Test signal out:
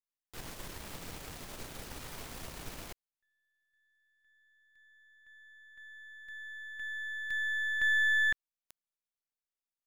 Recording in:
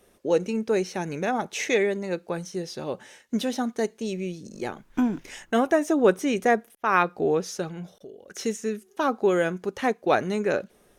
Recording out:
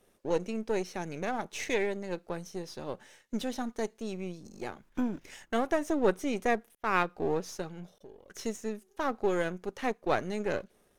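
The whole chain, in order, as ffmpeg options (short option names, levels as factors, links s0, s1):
-af "aeval=exprs='if(lt(val(0),0),0.447*val(0),val(0))':c=same,volume=0.562"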